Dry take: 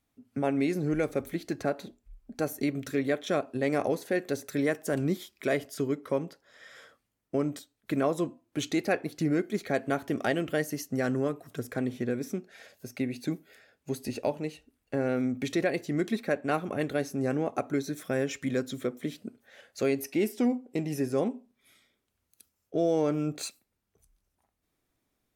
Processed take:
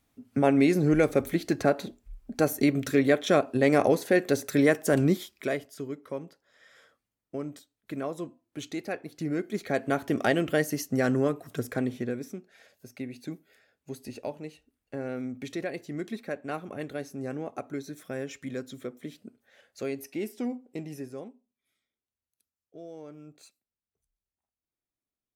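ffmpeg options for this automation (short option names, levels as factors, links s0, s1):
-af "volume=6.31,afade=t=out:st=5:d=0.66:silence=0.237137,afade=t=in:st=9.09:d=1.12:silence=0.316228,afade=t=out:st=11.62:d=0.73:silence=0.334965,afade=t=out:st=20.81:d=0.53:silence=0.251189"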